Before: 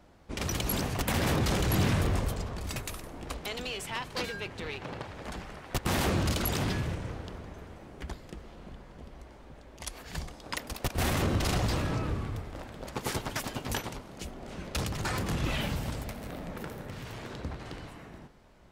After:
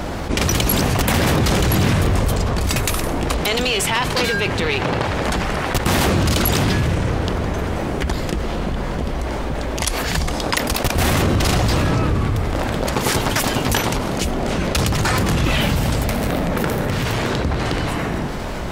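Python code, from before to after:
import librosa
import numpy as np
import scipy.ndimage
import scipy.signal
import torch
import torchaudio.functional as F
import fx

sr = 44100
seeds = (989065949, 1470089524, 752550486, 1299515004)

y = fx.env_flatten(x, sr, amount_pct=70)
y = F.gain(torch.from_numpy(y), 8.0).numpy()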